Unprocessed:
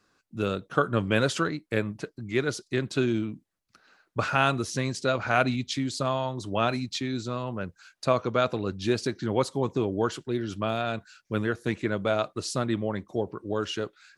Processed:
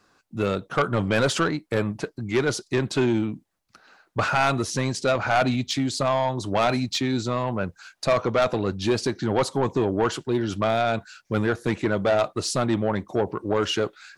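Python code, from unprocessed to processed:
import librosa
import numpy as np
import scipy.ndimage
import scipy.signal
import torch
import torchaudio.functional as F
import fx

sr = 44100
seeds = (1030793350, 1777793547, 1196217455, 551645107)

p1 = fx.peak_eq(x, sr, hz=810.0, db=5.0, octaves=0.85)
p2 = fx.rider(p1, sr, range_db=10, speed_s=2.0)
p3 = p1 + (p2 * 10.0 ** (-1.0 / 20.0))
y = 10.0 ** (-14.5 / 20.0) * np.tanh(p3 / 10.0 ** (-14.5 / 20.0))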